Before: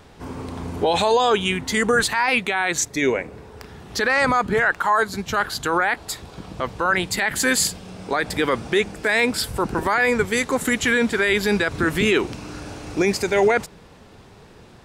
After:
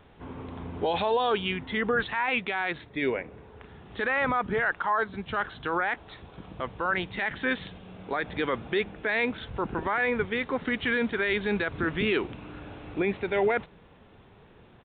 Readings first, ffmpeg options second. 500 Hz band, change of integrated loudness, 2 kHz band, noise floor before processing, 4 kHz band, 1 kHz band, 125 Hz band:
−7.5 dB, −8.0 dB, −7.5 dB, −47 dBFS, −10.5 dB, −7.5 dB, −7.5 dB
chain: -af "aresample=8000,aresample=44100,volume=-7.5dB"

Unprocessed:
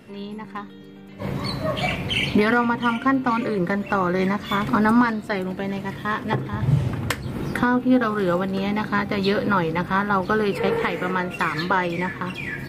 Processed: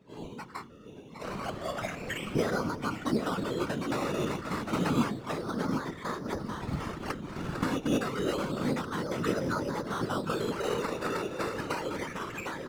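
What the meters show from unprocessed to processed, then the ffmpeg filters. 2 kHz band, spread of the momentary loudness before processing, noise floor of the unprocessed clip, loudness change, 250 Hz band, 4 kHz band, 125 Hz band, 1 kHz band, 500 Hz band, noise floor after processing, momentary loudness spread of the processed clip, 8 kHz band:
−12.5 dB, 9 LU, −41 dBFS, −10.0 dB, −10.0 dB, −10.0 dB, −10.5 dB, −11.5 dB, −8.0 dB, −48 dBFS, 8 LU, −0.5 dB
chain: -filter_complex "[0:a]asplit=2[link_01][link_02];[link_02]adelay=755,lowpass=frequency=1400:poles=1,volume=-5dB,asplit=2[link_03][link_04];[link_04]adelay=755,lowpass=frequency=1400:poles=1,volume=0.31,asplit=2[link_05][link_06];[link_06]adelay=755,lowpass=frequency=1400:poles=1,volume=0.31,asplit=2[link_07][link_08];[link_08]adelay=755,lowpass=frequency=1400:poles=1,volume=0.31[link_09];[link_03][link_05][link_07][link_09]amix=inputs=4:normalize=0[link_10];[link_01][link_10]amix=inputs=2:normalize=0,afftdn=noise_reduction=19:noise_floor=-43,acrossover=split=600[link_11][link_12];[link_12]acompressor=threshold=-39dB:ratio=6[link_13];[link_11][link_13]amix=inputs=2:normalize=0,aemphasis=mode=production:type=riaa,bandreject=frequency=60:width_type=h:width=6,bandreject=frequency=120:width_type=h:width=6,bandreject=frequency=180:width_type=h:width=6,acrusher=samples=11:mix=1:aa=0.000001:lfo=1:lforange=6.6:lforate=0.29,adynamicsmooth=sensitivity=6:basefreq=5900,adynamicequalizer=threshold=0.002:dfrequency=1300:dqfactor=3.1:tfrequency=1300:tqfactor=3.1:attack=5:release=100:ratio=0.375:range=4:mode=boostabove:tftype=bell,acrusher=bits=9:mode=log:mix=0:aa=0.000001,afftfilt=real='hypot(re,im)*cos(2*PI*random(0))':imag='hypot(re,im)*sin(2*PI*random(1))':win_size=512:overlap=0.75,volume=2.5dB"

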